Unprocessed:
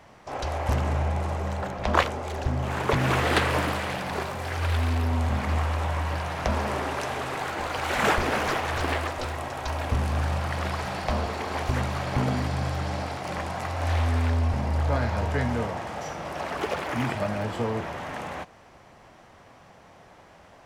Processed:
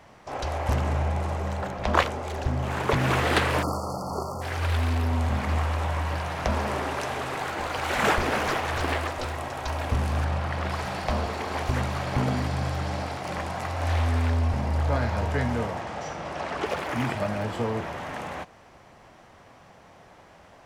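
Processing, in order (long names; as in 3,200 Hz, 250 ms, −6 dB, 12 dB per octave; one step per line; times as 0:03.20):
0:03.63–0:04.42: time-frequency box erased 1,400–4,300 Hz
0:10.24–0:10.70: high-shelf EQ 5,800 Hz −9.5 dB
0:15.81–0:16.66: low-pass filter 7,900 Hz 12 dB per octave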